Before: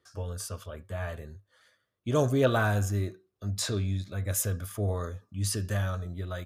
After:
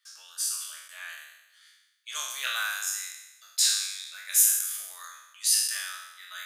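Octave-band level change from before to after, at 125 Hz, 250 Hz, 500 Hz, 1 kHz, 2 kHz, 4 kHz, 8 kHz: under -40 dB, under -40 dB, under -25 dB, -5.5 dB, +3.0 dB, +11.0 dB, +12.0 dB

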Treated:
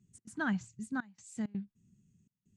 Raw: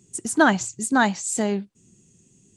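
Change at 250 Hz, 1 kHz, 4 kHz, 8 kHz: -13.5 dB, -21.5 dB, -22.5 dB, -25.5 dB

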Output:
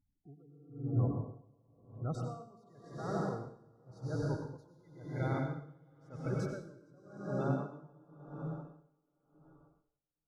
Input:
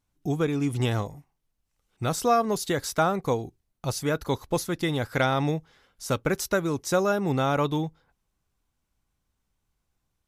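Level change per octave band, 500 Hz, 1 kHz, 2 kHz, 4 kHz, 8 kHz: -15.0 dB, -17.5 dB, -19.0 dB, -26.0 dB, -27.0 dB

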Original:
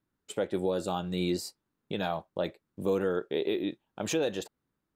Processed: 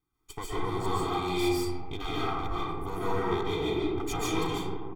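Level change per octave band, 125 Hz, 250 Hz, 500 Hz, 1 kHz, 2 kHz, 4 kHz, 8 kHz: +4.0 dB, +1.5 dB, -1.5 dB, +7.0 dB, +3.0 dB, +3.0 dB, +0.5 dB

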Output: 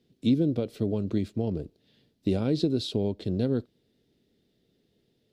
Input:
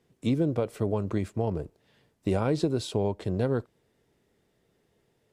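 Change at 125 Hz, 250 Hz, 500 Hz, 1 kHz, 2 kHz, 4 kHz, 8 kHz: -0.5 dB, +3.0 dB, -2.0 dB, -9.0 dB, -6.0 dB, +4.0 dB, -5.5 dB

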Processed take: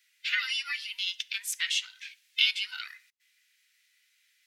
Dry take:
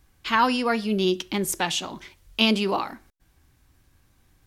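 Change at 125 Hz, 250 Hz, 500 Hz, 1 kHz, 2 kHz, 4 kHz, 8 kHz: under -40 dB, under -40 dB, under -40 dB, -25.0 dB, -1.5 dB, -1.0 dB, -4.5 dB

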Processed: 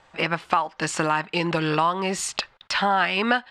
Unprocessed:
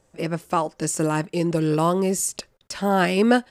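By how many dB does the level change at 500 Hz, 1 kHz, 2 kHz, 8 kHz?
-5.0 dB, +2.5 dB, +5.0 dB, -5.0 dB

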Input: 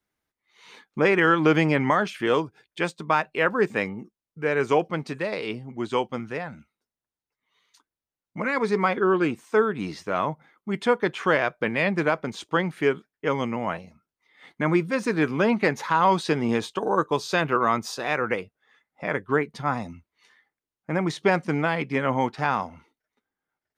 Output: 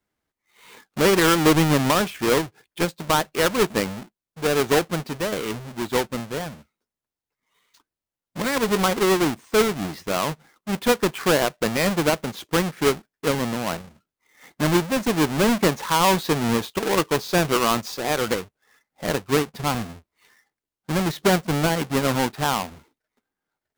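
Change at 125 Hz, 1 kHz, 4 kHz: +4.0 dB, +1.0 dB, +9.5 dB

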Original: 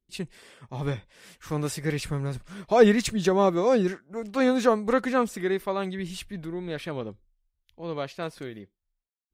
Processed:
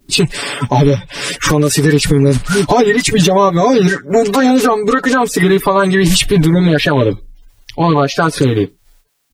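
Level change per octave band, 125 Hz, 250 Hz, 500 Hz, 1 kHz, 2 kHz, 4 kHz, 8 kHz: +19.5 dB, +15.0 dB, +12.0 dB, +15.5 dB, +17.0 dB, +20.0 dB, +20.0 dB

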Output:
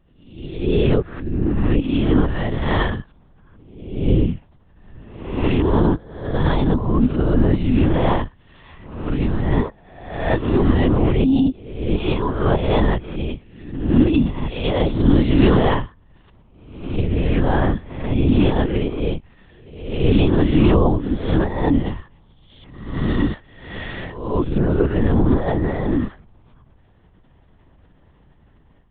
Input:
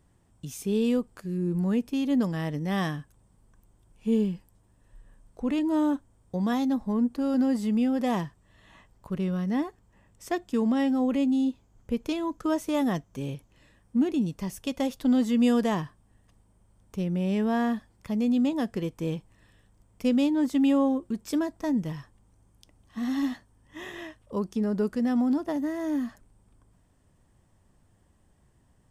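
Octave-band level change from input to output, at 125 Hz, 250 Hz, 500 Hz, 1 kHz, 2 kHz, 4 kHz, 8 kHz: +16.5 dB, +5.5 dB, +10.0 dB, +9.0 dB, +10.0 dB, +9.0 dB, under -30 dB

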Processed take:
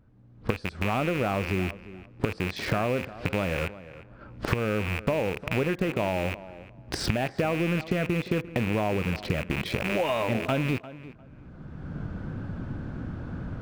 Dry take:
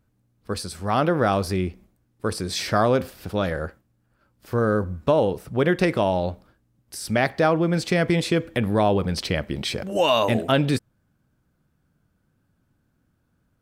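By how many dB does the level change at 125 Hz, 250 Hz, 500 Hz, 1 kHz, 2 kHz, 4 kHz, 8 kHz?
-3.0 dB, -4.5 dB, -6.5 dB, -7.0 dB, -2.0 dB, -7.0 dB, -8.5 dB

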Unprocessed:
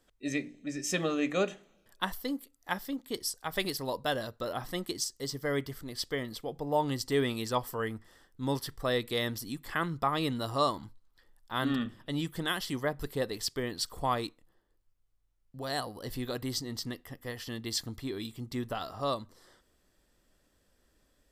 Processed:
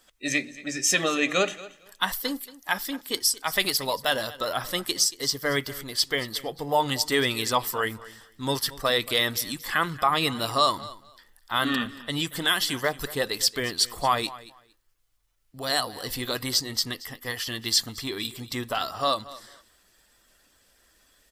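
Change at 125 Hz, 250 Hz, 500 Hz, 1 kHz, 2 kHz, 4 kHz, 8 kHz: +1.0 dB, +2.0 dB, +4.0 dB, +7.5 dB, +10.0 dB, +11.5 dB, +12.0 dB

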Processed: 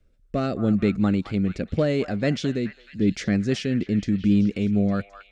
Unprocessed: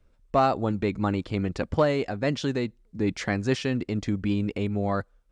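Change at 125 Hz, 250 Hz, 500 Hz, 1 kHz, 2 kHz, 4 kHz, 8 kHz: +3.5 dB, +6.0 dB, -0.5 dB, -8.5 dB, -0.5 dB, +1.0 dB, +1.0 dB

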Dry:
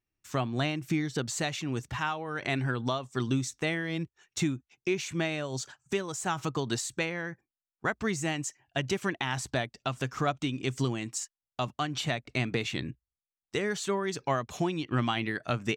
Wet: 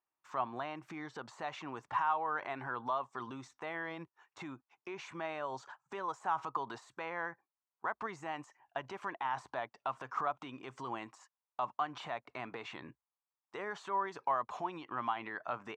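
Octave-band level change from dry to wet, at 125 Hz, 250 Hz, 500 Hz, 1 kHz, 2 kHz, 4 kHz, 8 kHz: -22.0 dB, -15.5 dB, -9.5 dB, 0.0 dB, -9.0 dB, -16.0 dB, -24.0 dB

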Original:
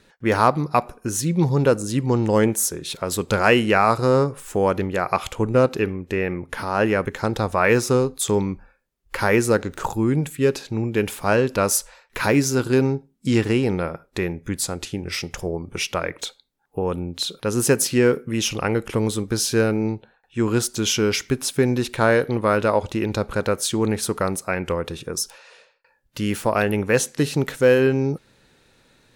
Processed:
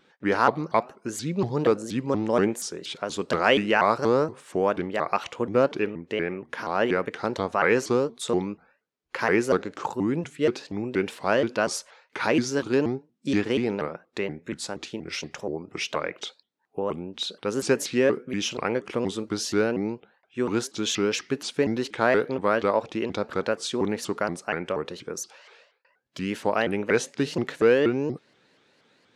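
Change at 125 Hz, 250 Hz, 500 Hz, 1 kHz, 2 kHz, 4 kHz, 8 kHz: -11.5 dB, -5.0 dB, -3.5 dB, -3.5 dB, -3.5 dB, -4.0 dB, -10.0 dB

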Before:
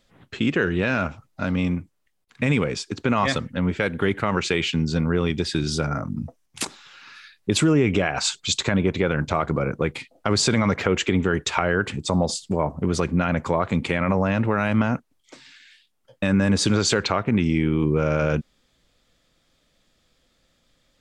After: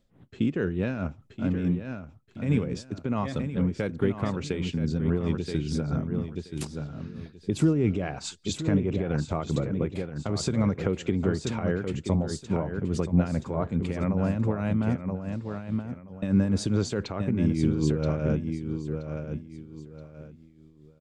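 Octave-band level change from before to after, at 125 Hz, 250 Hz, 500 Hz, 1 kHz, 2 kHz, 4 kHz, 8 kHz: -2.0 dB, -3.0 dB, -6.0 dB, -11.5 dB, -14.0 dB, -13.5 dB, -12.0 dB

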